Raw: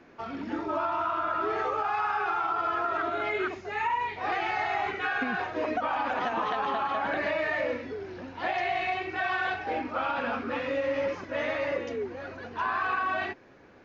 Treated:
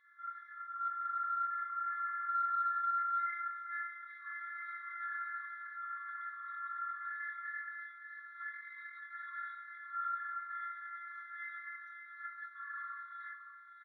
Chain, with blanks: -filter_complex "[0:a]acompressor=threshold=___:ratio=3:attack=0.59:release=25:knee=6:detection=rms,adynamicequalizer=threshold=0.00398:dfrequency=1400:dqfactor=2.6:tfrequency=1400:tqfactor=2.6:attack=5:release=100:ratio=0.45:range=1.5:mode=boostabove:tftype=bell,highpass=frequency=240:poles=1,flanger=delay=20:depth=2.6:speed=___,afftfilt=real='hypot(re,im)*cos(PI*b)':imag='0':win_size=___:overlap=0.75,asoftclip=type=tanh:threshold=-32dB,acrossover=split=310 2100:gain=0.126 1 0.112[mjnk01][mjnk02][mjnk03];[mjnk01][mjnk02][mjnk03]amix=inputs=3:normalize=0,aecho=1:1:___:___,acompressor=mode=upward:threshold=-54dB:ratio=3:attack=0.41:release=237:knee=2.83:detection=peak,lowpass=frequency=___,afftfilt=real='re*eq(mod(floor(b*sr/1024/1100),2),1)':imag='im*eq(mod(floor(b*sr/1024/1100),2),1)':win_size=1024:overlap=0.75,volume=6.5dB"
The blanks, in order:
-34dB, 2.5, 512, 566, 0.355, 3200